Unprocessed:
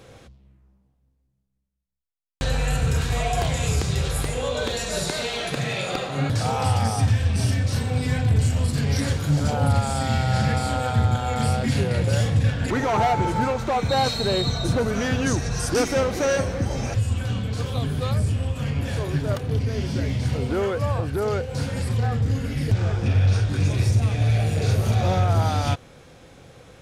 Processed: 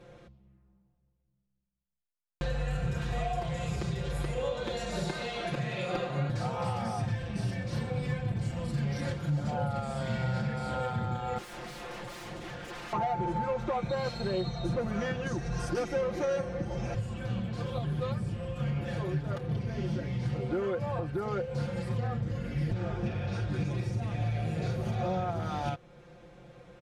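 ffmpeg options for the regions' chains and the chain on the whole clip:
-filter_complex "[0:a]asettb=1/sr,asplit=3[s0][s1][s2];[s0]atrim=end=11.384[s3];[s1]atrim=start=11.38:end=12.93,asetpts=PTS-STARTPTS,afade=t=in:d=0.004:c=qsin,afade=t=out:st=1.546:d=0.004:c=qsin,bass=f=250:g=-11,treble=f=4000:g=4,aeval=exprs='0.0316*(abs(mod(val(0)/0.0316+3,4)-2)-1)':c=same[s4];[s2]atrim=start=12.926[s5];[s3][s4]acrossfade=d=0.004:c1=hsin:c2=qsin[s6];[s6][s5]acrossfade=d=0.004:c1=qsin:c2=hsin,lowpass=f=1900:p=1,aecho=1:1:5.7:0.92,alimiter=limit=0.168:level=0:latency=1:release=367,volume=0.447"

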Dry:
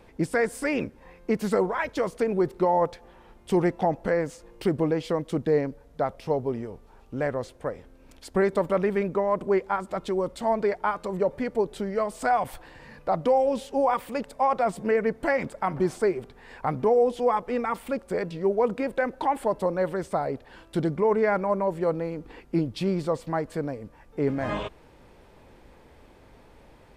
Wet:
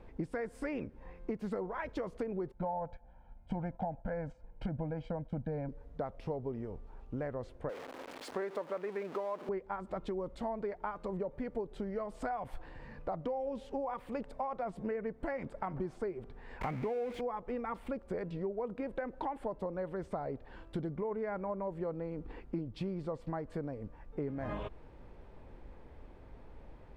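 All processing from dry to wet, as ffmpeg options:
-filter_complex "[0:a]asettb=1/sr,asplit=3[s0][s1][s2];[s0]atrim=end=2.524[s3];[s1]atrim=start=2.52:end=5.69,asetpts=PTS-STARTPTS,afade=t=in:d=0.004:c=qsin,afade=t=out:st=3.166:d=0.004:c=qsin,lowpass=f=1700:p=1,aecho=1:1:1.3:0.95,atrim=end_sample=139797,agate=range=0.316:threshold=0.00708:ratio=16:release=100:detection=peak[s4];[s2]atrim=start=5.686[s5];[s3][s4]acrossfade=d=0.004:c1=hsin:c2=qsin[s6];[s6][s5]acrossfade=d=0.004:c1=qsin:c2=hsin,asettb=1/sr,asplit=3[s7][s8][s9];[s7]atrim=end=7.694[s10];[s8]atrim=start=7.69:end=9.49,asetpts=PTS-STARTPTS,afade=t=in:d=0.004:c=qsin,afade=t=out:st=1.796:d=0.004:c=qsin,aeval=exprs='val(0)+0.5*0.0282*sgn(val(0))':c=same,highpass=430[s11];[s9]atrim=start=9.486[s12];[s10][s11]acrossfade=d=0.004:c1=hsin:c2=qsin[s13];[s13][s12]acrossfade=d=0.004:c1=qsin:c2=hsin,asettb=1/sr,asplit=3[s14][s15][s16];[s14]atrim=end=16.614[s17];[s15]atrim=start=16.61:end=17.21,asetpts=PTS-STARTPTS,afade=t=in:d=0.004:c=qsin,afade=t=out:st=0.596:d=0.004:c=qsin,aeval=exprs='val(0)+0.5*0.0376*sgn(val(0))':c=same,highpass=f=73:p=1,equalizer=f=2200:t=o:w=0.38:g=12.5[s18];[s16]atrim=start=17.206[s19];[s17][s18]acrossfade=d=0.004:c1=hsin:c2=qsin[s20];[s20][s19]acrossfade=d=0.004:c1=qsin:c2=hsin,lowpass=f=1600:p=1,lowshelf=f=65:g=11,acompressor=threshold=0.0282:ratio=6,volume=0.668"

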